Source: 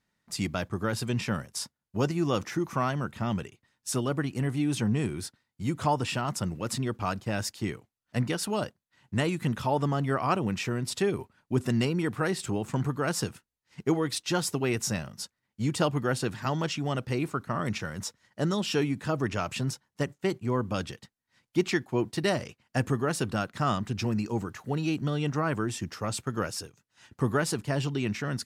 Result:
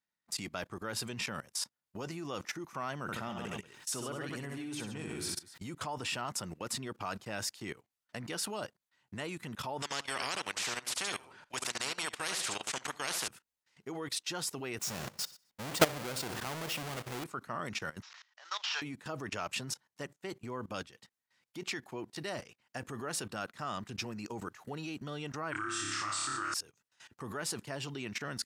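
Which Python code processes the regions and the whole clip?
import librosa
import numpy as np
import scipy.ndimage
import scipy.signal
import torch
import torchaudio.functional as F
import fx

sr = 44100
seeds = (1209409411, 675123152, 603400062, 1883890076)

y = fx.chain(x, sr, fx.echo_multitap(ms=(64, 138, 252), db=(-5.5, -8.5, -20.0)),
    fx.sustainer(db_per_s=40.0), at=(3.02, 5.65))
y = fx.chain(y, sr, fx.lowpass(hz=7900.0, slope=12),
    fx.echo_feedback(ms=71, feedback_pct=17, wet_db=-13),
    fx.spectral_comp(ratio=4.0), at=(9.82, 13.28))
y = fx.chain(y, sr, fx.halfwave_hold(),
    fx.echo_feedback(ms=63, feedback_pct=50, wet_db=-16.5), at=(14.79, 17.24))
y = fx.chain(y, sr, fx.cvsd(bps=32000),
    fx.highpass(hz=930.0, slope=24),
    fx.sustainer(db_per_s=120.0), at=(18.02, 18.82))
y = fx.chain(y, sr, fx.curve_eq(hz=(120.0, 220.0, 320.0, 450.0, 660.0, 1300.0, 4500.0, 8800.0, 13000.0), db=(0, -13, 11, -20, -6, 10, 6, 7, -23)),
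    fx.room_flutter(wall_m=5.0, rt60_s=0.87), at=(25.52, 26.54))
y = fx.low_shelf(y, sr, hz=130.0, db=-3.5)
y = fx.level_steps(y, sr, step_db=19)
y = fx.low_shelf(y, sr, hz=330.0, db=-9.5)
y = y * librosa.db_to_amplitude(3.0)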